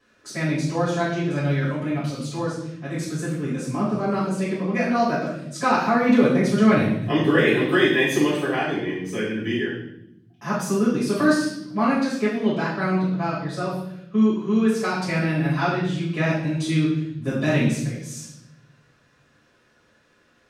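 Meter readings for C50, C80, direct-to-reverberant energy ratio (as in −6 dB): 2.5 dB, 6.0 dB, −10.0 dB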